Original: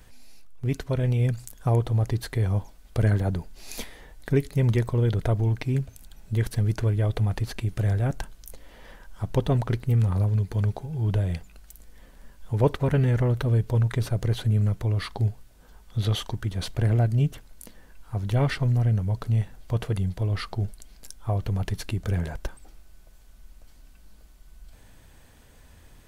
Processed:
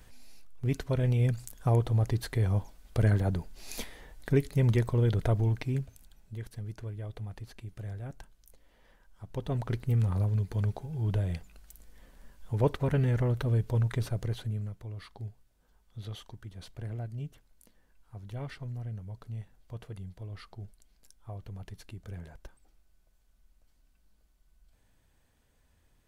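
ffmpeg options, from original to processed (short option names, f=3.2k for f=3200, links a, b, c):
-af "volume=7.5dB,afade=t=out:st=5.38:d=1:silence=0.237137,afade=t=in:st=9.28:d=0.53:silence=0.298538,afade=t=out:st=13.98:d=0.75:silence=0.281838"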